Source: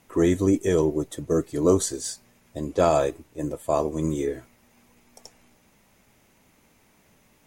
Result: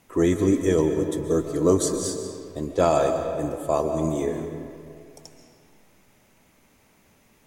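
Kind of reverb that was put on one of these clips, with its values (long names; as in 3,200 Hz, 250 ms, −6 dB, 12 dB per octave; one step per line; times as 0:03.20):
comb and all-pass reverb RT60 2.3 s, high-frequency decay 0.65×, pre-delay 95 ms, DRR 6 dB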